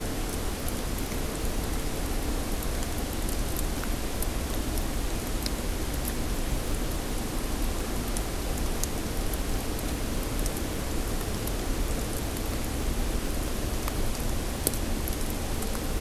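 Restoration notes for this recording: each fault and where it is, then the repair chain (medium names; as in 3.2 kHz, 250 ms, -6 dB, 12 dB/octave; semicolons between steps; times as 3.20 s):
crackle 21 per s -33 dBFS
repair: de-click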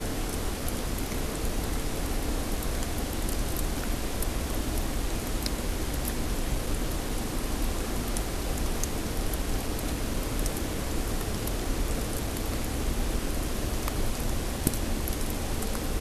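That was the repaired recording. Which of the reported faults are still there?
nothing left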